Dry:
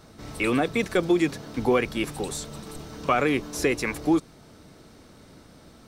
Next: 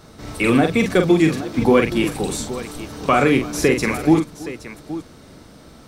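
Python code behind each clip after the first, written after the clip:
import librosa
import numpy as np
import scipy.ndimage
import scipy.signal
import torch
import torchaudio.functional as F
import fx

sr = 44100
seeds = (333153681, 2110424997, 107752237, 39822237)

y = fx.dynamic_eq(x, sr, hz=170.0, q=1.1, threshold_db=-39.0, ratio=4.0, max_db=6)
y = fx.echo_multitap(y, sr, ms=(44, 327, 821), db=(-6.0, -19.5, -14.0))
y = F.gain(torch.from_numpy(y), 5.0).numpy()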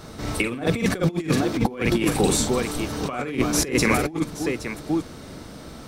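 y = fx.over_compress(x, sr, threshold_db=-21.0, ratio=-0.5)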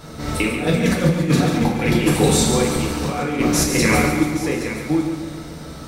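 y = fx.echo_feedback(x, sr, ms=141, feedback_pct=50, wet_db=-7)
y = fx.rev_gated(y, sr, seeds[0], gate_ms=140, shape='falling', drr_db=-0.5)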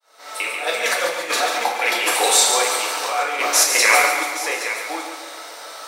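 y = fx.fade_in_head(x, sr, length_s=0.9)
y = scipy.signal.sosfilt(scipy.signal.butter(4, 620.0, 'highpass', fs=sr, output='sos'), y)
y = F.gain(torch.from_numpy(y), 6.0).numpy()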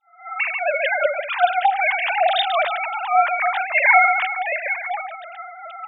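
y = fx.sine_speech(x, sr)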